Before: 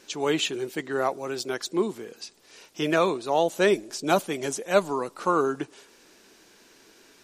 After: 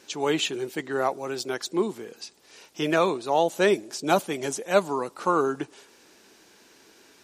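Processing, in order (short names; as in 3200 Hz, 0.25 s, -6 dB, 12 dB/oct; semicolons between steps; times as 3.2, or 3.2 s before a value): HPF 44 Hz; bell 840 Hz +3 dB 0.23 oct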